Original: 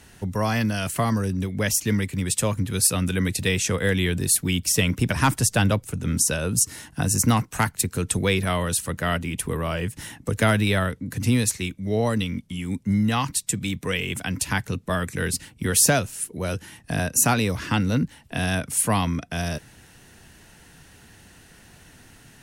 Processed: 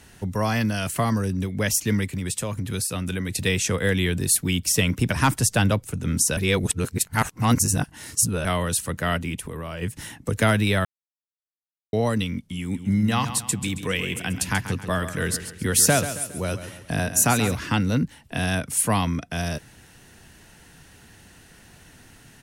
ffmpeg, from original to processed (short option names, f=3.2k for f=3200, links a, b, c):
-filter_complex "[0:a]asettb=1/sr,asplit=3[a][b][c];[a]atrim=end=2.144[d];[b]atrim=start=2.14:end=3.36,asetpts=PTS-STARTPTS,afade=t=in:d=0.004:c=qsin,afade=t=out:st=1.216:d=0.004:c=qsin,acompressor=threshold=-23dB:ratio=6:attack=3.2:release=140:knee=1:detection=peak[e];[c]atrim=start=3.356[f];[d][e]acrossfade=d=0.004:c1=hsin:c2=qsin[g];[g][f]acrossfade=d=0.004:c1=qsin:c2=hsin,asplit=3[h][i][j];[h]afade=t=out:st=9.35:d=0.02[k];[i]acompressor=threshold=-29dB:ratio=6:attack=3.2:release=140:knee=1:detection=peak,afade=t=in:st=9.35:d=0.02,afade=t=out:st=9.81:d=0.02[l];[j]afade=t=in:st=9.81:d=0.02[m];[k][l][m]amix=inputs=3:normalize=0,asplit=3[n][o][p];[n]afade=t=out:st=12.73:d=0.02[q];[o]aecho=1:1:136|272|408|544:0.282|0.121|0.0521|0.0224,afade=t=in:st=12.73:d=0.02,afade=t=out:st=17.54:d=0.02[r];[p]afade=t=in:st=17.54:d=0.02[s];[q][r][s]amix=inputs=3:normalize=0,asplit=5[t][u][v][w][x];[t]atrim=end=6.372[y];[u]atrim=start=6.368:end=8.452,asetpts=PTS-STARTPTS,areverse[z];[v]atrim=start=8.448:end=10.85,asetpts=PTS-STARTPTS,afade=t=out:st=2.398:d=0.004:c=hsin[aa];[w]atrim=start=10.85:end=11.93,asetpts=PTS-STARTPTS,volume=0[ab];[x]atrim=start=11.93,asetpts=PTS-STARTPTS,afade=t=in:d=0.004:c=hsin[ac];[y][z]acrossfade=d=0.004:c1=hsin:c2=hsin[ad];[aa][ab][ac]concat=n=3:v=0:a=1[ae];[ad][ae]acrossfade=d=0.004:c1=hsin:c2=hsin"